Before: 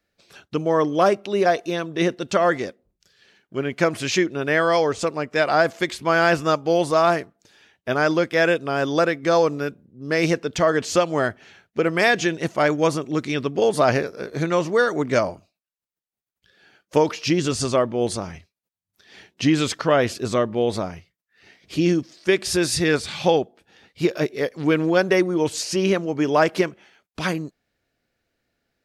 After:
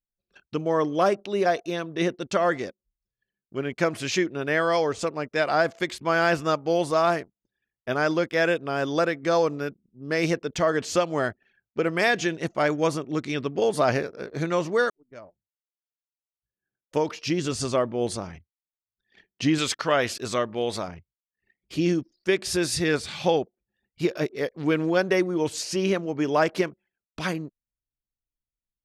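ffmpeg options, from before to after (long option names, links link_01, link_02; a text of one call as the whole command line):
ffmpeg -i in.wav -filter_complex "[0:a]asettb=1/sr,asplit=3[link_01][link_02][link_03];[link_01]atrim=end=19.584[link_04];[link_02]atrim=start=19.58:end=20.88,asetpts=PTS-STARTPTS,afade=type=in:duration=0.004:curve=qsin,afade=type=out:start_time=1.296:duration=0.004:curve=qsin,tiltshelf=frequency=740:gain=-4.5[link_05];[link_03]atrim=start=20.876[link_06];[link_04][link_05]acrossfade=duration=0.004:curve1=hsin:curve2=qsin[link_07];[link_07][link_06]acrossfade=duration=0.004:curve1=qsin:curve2=hsin,asplit=2[link_08][link_09];[link_08]atrim=end=14.9,asetpts=PTS-STARTPTS,afade=type=out:start_time=14.896:duration=0.004:curve=hsin[link_10];[link_09]atrim=start=14.9,asetpts=PTS-STARTPTS,afade=type=in:duration=2.86[link_11];[link_10][link_11]concat=n=2:v=0:a=1,anlmdn=0.158,volume=-4dB" out.wav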